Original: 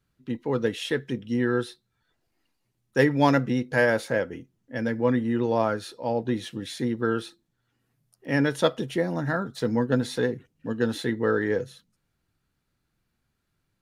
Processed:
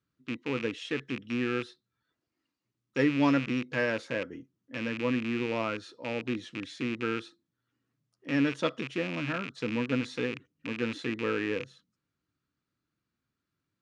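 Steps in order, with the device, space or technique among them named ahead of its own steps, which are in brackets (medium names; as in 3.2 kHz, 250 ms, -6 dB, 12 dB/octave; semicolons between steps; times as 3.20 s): car door speaker with a rattle (rattle on loud lows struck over -36 dBFS, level -18 dBFS; cabinet simulation 83–7400 Hz, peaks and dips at 290 Hz +7 dB, 780 Hz -6 dB, 1.2 kHz +5 dB); trim -8 dB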